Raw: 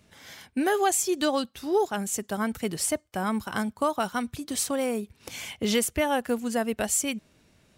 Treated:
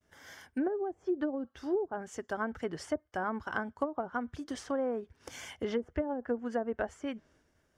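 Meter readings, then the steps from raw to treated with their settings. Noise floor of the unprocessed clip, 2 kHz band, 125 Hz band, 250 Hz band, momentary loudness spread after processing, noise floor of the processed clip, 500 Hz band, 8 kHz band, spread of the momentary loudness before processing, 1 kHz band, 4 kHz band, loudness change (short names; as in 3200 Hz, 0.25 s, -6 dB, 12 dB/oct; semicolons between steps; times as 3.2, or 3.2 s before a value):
-63 dBFS, -7.5 dB, -9.5 dB, -7.0 dB, 8 LU, -73 dBFS, -6.0 dB, -24.0 dB, 10 LU, -9.0 dB, -16.5 dB, -8.5 dB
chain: thirty-one-band EQ 125 Hz -9 dB, 200 Hz -11 dB, 1600 Hz +5 dB, 2500 Hz -10 dB, 4000 Hz -12 dB, 8000 Hz -5 dB; expander -58 dBFS; bell 11000 Hz -6 dB 0.4 oct; treble ducked by the level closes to 360 Hz, closed at -21 dBFS; gain -3.5 dB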